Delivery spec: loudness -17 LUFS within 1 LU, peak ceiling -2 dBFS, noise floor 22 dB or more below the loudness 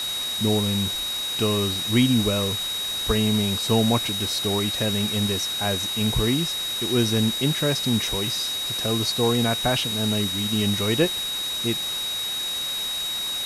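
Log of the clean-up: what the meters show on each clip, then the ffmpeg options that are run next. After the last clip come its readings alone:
steady tone 3.8 kHz; tone level -26 dBFS; noise floor -28 dBFS; noise floor target -45 dBFS; loudness -22.5 LUFS; peak level -7.5 dBFS; loudness target -17.0 LUFS
-> -af "bandreject=f=3800:w=30"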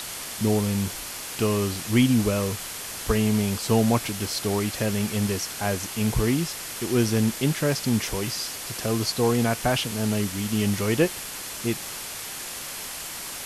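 steady tone not found; noise floor -36 dBFS; noise floor target -48 dBFS
-> -af "afftdn=nr=12:nf=-36"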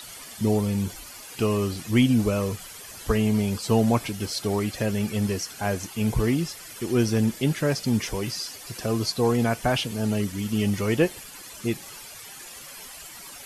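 noise floor -42 dBFS; noise floor target -48 dBFS
-> -af "afftdn=nr=6:nf=-42"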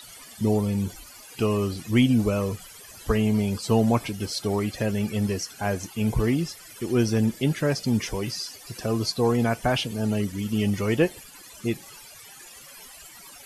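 noise floor -46 dBFS; noise floor target -48 dBFS
-> -af "afftdn=nr=6:nf=-46"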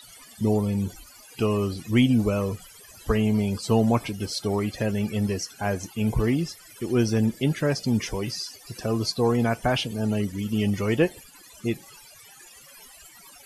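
noise floor -49 dBFS; loudness -25.5 LUFS; peak level -8.5 dBFS; loudness target -17.0 LUFS
-> -af "volume=2.66,alimiter=limit=0.794:level=0:latency=1"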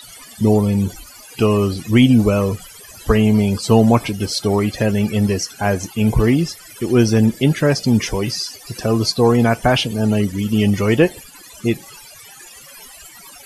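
loudness -17.0 LUFS; peak level -2.0 dBFS; noise floor -41 dBFS

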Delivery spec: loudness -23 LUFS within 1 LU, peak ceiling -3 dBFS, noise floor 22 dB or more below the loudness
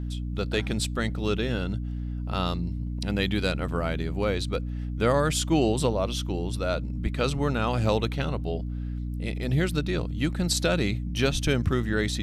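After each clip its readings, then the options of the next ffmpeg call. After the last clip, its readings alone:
hum 60 Hz; highest harmonic 300 Hz; hum level -29 dBFS; loudness -27.5 LUFS; peak level -9.5 dBFS; loudness target -23.0 LUFS
-> -af "bandreject=f=60:t=h:w=4,bandreject=f=120:t=h:w=4,bandreject=f=180:t=h:w=4,bandreject=f=240:t=h:w=4,bandreject=f=300:t=h:w=4"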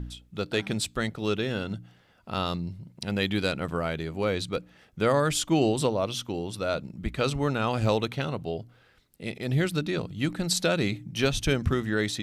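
hum not found; loudness -28.5 LUFS; peak level -11.0 dBFS; loudness target -23.0 LUFS
-> -af "volume=1.88"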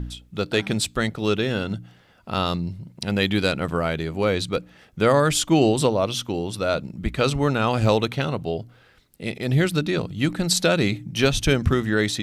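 loudness -23.0 LUFS; peak level -5.5 dBFS; noise floor -55 dBFS

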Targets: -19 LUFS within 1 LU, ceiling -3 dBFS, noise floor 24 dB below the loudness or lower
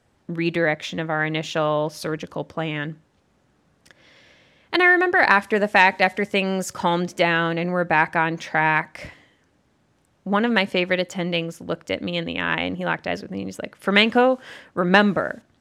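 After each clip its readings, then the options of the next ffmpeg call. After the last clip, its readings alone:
loudness -21.0 LUFS; peak level -1.0 dBFS; loudness target -19.0 LUFS
-> -af "volume=1.26,alimiter=limit=0.708:level=0:latency=1"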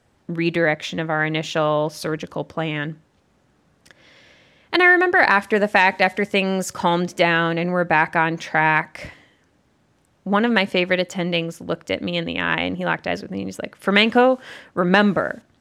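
loudness -19.5 LUFS; peak level -3.0 dBFS; noise floor -62 dBFS

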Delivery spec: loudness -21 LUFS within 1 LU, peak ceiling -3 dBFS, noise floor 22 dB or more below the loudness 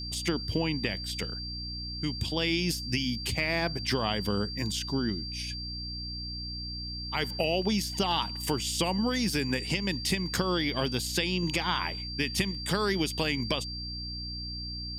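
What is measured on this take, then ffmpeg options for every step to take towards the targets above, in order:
hum 60 Hz; highest harmonic 300 Hz; hum level -38 dBFS; steady tone 4.7 kHz; tone level -37 dBFS; loudness -30.0 LUFS; peak level -14.5 dBFS; loudness target -21.0 LUFS
-> -af "bandreject=f=60:t=h:w=6,bandreject=f=120:t=h:w=6,bandreject=f=180:t=h:w=6,bandreject=f=240:t=h:w=6,bandreject=f=300:t=h:w=6"
-af "bandreject=f=4700:w=30"
-af "volume=2.82"

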